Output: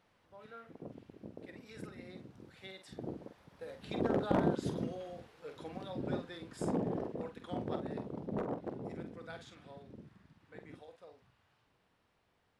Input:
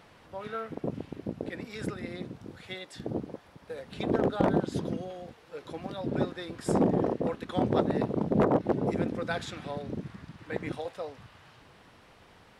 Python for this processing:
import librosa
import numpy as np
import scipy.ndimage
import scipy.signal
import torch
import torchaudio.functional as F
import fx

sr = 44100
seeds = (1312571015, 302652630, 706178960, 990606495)

y = fx.doppler_pass(x, sr, speed_mps=9, closest_m=12.0, pass_at_s=4.74)
y = fx.doubler(y, sr, ms=47.0, db=-8)
y = y * librosa.db_to_amplitude(-5.0)